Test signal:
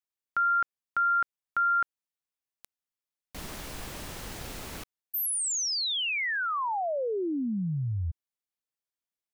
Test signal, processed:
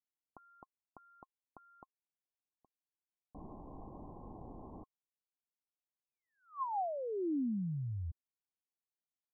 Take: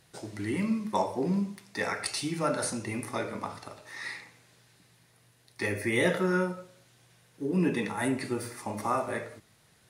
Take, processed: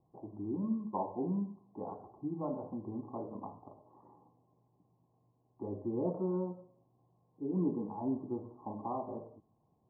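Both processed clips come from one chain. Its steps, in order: rippled Chebyshev low-pass 1.1 kHz, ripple 6 dB; trim -4 dB

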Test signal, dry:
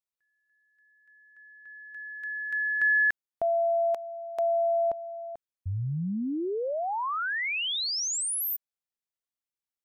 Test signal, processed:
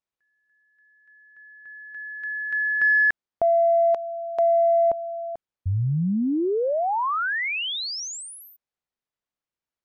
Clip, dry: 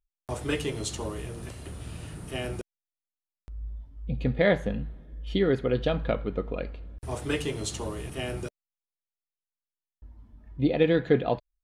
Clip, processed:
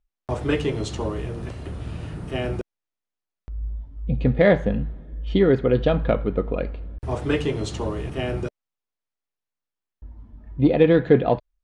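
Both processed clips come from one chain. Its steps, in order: low-pass 6.6 kHz 12 dB/octave; treble shelf 2.5 kHz -9 dB; in parallel at -10 dB: saturation -18.5 dBFS; on the sum: trim +5 dB

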